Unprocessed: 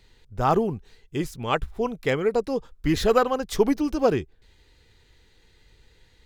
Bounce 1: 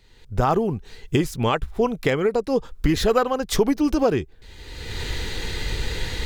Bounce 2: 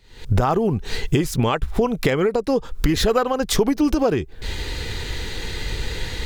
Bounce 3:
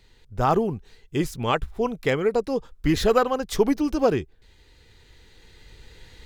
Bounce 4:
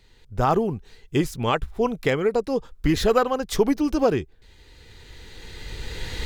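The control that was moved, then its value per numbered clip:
recorder AGC, rising by: 32, 90, 5.1, 13 dB/s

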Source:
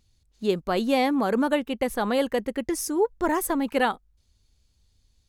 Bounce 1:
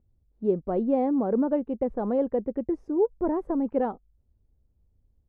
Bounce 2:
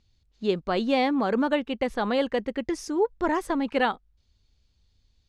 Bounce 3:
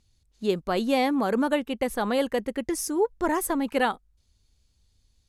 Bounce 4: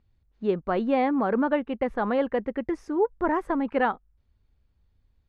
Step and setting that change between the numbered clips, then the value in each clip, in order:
Chebyshev low-pass, frequency: 540, 4300, 12000, 1600 Hz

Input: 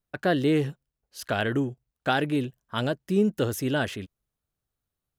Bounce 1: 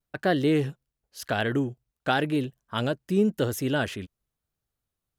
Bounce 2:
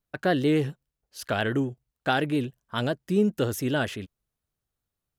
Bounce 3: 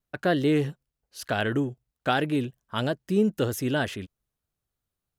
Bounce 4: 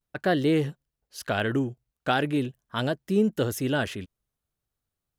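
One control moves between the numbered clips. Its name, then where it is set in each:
vibrato, rate: 0.94, 7.3, 3.2, 0.41 Hz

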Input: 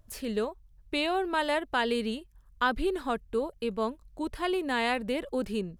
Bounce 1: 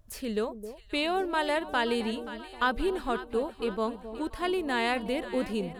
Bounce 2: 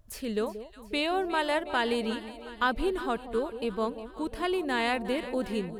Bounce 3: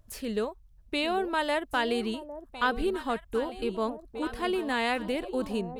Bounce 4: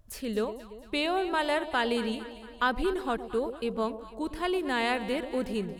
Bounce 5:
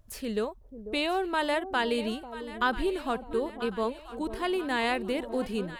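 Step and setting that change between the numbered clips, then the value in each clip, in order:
echo with dull and thin repeats by turns, time: 0.264, 0.18, 0.804, 0.114, 0.494 s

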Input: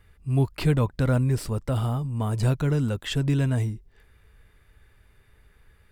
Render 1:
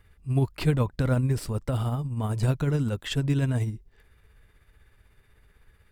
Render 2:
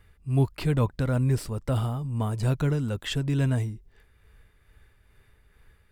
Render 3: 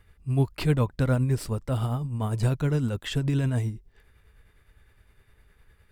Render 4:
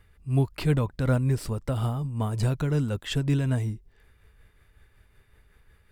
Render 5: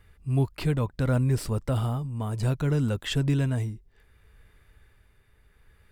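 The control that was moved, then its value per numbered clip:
tremolo, rate: 16, 2.3, 9.8, 5.4, 0.66 Hz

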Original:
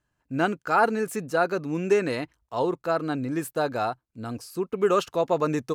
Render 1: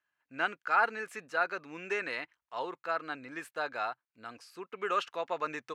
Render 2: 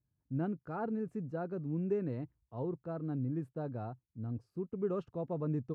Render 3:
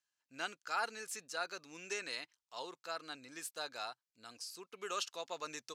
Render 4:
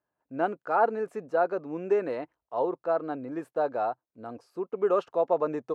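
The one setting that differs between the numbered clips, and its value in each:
band-pass, frequency: 2000, 110, 5300, 630 Hz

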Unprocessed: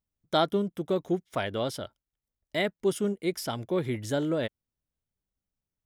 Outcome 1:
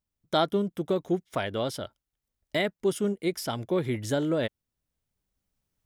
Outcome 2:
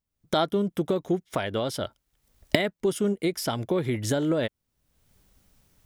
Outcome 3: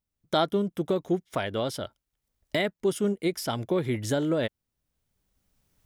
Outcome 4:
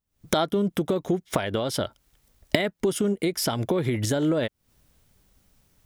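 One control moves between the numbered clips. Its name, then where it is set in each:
recorder AGC, rising by: 5.2, 34, 13, 89 dB/s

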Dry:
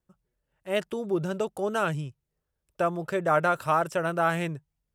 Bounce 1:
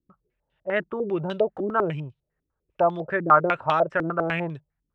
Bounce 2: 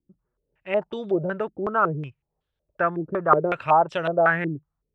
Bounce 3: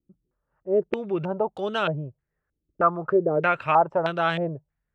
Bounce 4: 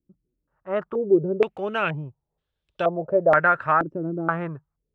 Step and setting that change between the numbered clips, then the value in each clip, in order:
stepped low-pass, rate: 10, 5.4, 3.2, 2.1 Hz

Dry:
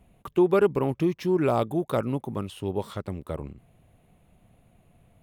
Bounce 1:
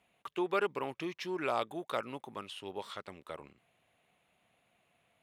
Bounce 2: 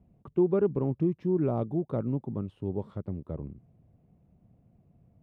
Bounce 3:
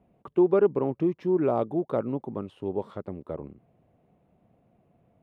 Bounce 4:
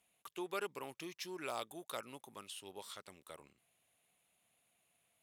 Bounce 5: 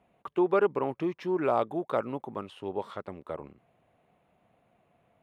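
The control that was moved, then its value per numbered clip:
band-pass, frequency: 2800, 150, 410, 7700, 1000 Hz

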